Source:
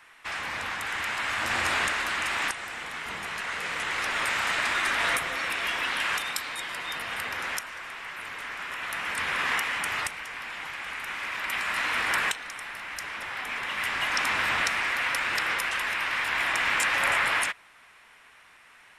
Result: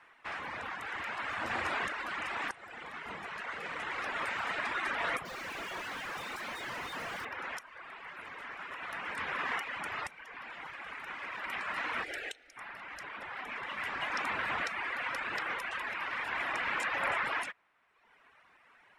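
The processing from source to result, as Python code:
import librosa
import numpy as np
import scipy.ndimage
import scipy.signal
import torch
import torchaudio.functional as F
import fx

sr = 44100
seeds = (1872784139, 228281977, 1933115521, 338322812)

y = fx.clip_1bit(x, sr, at=(5.25, 7.25))
y = fx.fixed_phaser(y, sr, hz=430.0, stages=4, at=(12.04, 12.57))
y = fx.lowpass(y, sr, hz=1100.0, slope=6)
y = fx.dereverb_blind(y, sr, rt60_s=1.1)
y = fx.low_shelf(y, sr, hz=120.0, db=-9.5)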